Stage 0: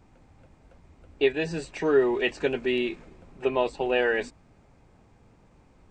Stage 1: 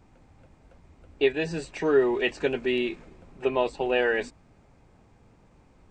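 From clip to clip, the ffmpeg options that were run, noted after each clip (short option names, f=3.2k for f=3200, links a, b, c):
-af anull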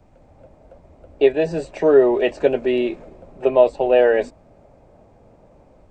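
-filter_complex "[0:a]equalizer=f=600:t=o:w=0.58:g=12.5,acrossover=split=220|1100|2500[a][b][c][d];[b]dynaudnorm=f=170:g=3:m=6dB[e];[a][e][c][d]amix=inputs=4:normalize=0,lowshelf=f=190:g=6,volume=-1dB"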